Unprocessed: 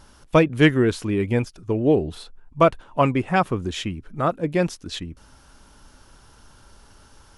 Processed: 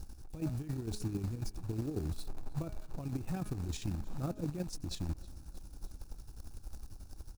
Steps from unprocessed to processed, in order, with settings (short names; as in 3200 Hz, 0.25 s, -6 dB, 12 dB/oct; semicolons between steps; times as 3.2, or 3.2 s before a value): de-hum 209.3 Hz, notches 11; chopper 11 Hz, depth 60%, duty 45%; passive tone stack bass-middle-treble 10-0-1; negative-ratio compressor -47 dBFS, ratio -1; short-mantissa float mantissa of 2-bit; thirty-one-band EQ 315 Hz +5 dB, 800 Hz +7 dB, 2000 Hz -10 dB, 3150 Hz -11 dB; on a send: feedback echo 0.314 s, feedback 57%, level -23 dB; on the sum: gain +10 dB